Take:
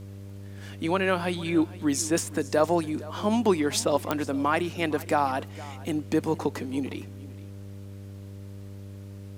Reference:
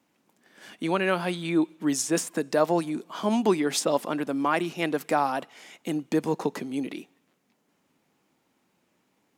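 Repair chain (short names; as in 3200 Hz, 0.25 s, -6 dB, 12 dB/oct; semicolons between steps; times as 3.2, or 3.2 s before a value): de-click; de-hum 98.9 Hz, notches 6; expander -33 dBFS, range -21 dB; inverse comb 0.462 s -19 dB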